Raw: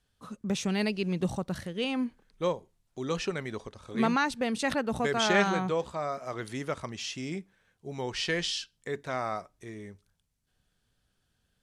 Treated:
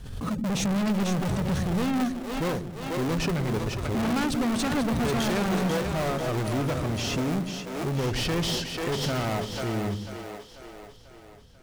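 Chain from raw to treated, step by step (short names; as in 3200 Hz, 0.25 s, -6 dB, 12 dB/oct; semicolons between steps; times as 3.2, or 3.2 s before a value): low shelf 420 Hz +11 dB; in parallel at -5 dB: decimation with a swept rate 33×, swing 60% 3.3 Hz; on the sum: soft clip -31.5 dBFS, distortion -3 dB; on a send: split-band echo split 320 Hz, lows 0.107 s, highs 0.492 s, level -6.5 dB; on the sum: backwards sustainer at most 47 dB/s; gain +6 dB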